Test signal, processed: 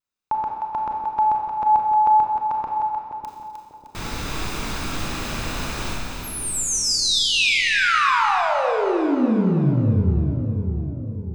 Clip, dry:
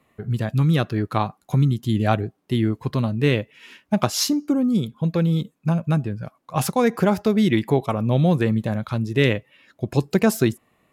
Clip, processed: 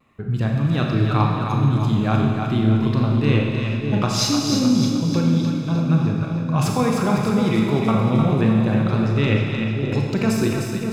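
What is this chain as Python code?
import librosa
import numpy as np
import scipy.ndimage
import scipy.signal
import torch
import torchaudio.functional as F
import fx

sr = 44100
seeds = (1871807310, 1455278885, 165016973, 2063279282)

p1 = fx.peak_eq(x, sr, hz=12000.0, db=-14.5, octaves=0.68)
p2 = p1 + 0.3 * np.pad(p1, (int(0.8 * sr / 1000.0), 0))[:len(p1)]
p3 = fx.over_compress(p2, sr, threshold_db=-21.0, ratio=-1.0)
p4 = p2 + (p3 * 10.0 ** (3.0 / 20.0))
p5 = fx.vibrato(p4, sr, rate_hz=0.43, depth_cents=14.0)
p6 = p5 + fx.echo_split(p5, sr, split_hz=560.0, low_ms=598, high_ms=306, feedback_pct=52, wet_db=-5.5, dry=0)
p7 = fx.rev_schroeder(p6, sr, rt60_s=1.6, comb_ms=28, drr_db=0.5)
y = p7 * 10.0 ** (-8.5 / 20.0)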